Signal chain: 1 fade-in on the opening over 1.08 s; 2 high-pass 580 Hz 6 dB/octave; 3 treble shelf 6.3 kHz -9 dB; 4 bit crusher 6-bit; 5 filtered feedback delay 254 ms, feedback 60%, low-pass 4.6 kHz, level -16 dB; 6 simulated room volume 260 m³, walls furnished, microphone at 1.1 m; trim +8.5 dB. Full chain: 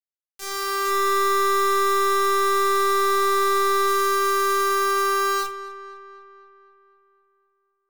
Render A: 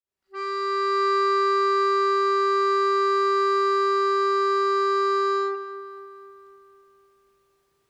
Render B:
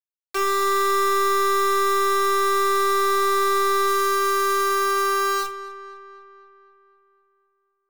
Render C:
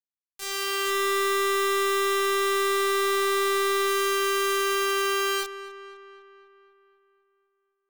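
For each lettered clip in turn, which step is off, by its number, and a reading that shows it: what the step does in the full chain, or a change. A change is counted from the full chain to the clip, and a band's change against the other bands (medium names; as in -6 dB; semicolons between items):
4, crest factor change -1.5 dB; 1, momentary loudness spread change -3 LU; 6, echo-to-direct -4.0 dB to -15.0 dB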